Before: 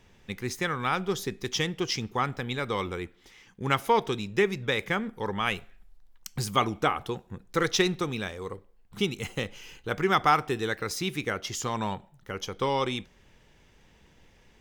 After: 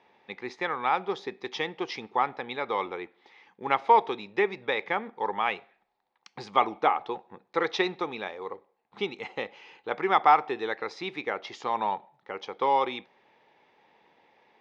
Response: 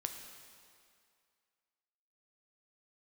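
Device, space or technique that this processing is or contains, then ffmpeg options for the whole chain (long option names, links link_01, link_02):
phone earpiece: -af "highpass=400,equalizer=frequency=840:width_type=q:width=4:gain=8,equalizer=frequency=1500:width_type=q:width=4:gain=-6,equalizer=frequency=3000:width_type=q:width=4:gain=-8,lowpass=frequency=3700:width=0.5412,lowpass=frequency=3700:width=1.3066,volume=1.5dB"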